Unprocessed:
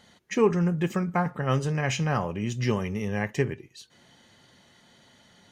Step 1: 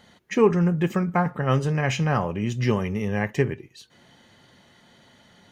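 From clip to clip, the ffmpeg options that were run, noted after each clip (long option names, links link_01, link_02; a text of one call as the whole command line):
ffmpeg -i in.wav -af "equalizer=frequency=7100:width=0.62:gain=-5,volume=3.5dB" out.wav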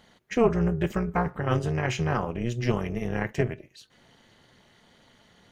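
ffmpeg -i in.wav -af "tremolo=f=240:d=0.824" out.wav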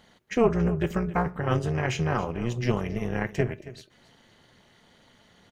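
ffmpeg -i in.wav -af "aecho=1:1:274:0.15" out.wav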